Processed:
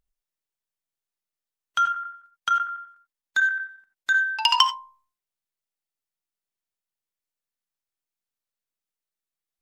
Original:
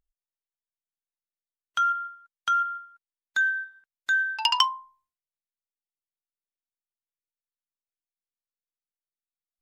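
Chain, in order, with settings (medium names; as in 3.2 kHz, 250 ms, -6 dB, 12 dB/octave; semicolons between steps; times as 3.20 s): 1.78–4.17 s: square tremolo 11 Hz, depth 60%, duty 80%; reverberation, pre-delay 3 ms, DRR 10.5 dB; trim +3 dB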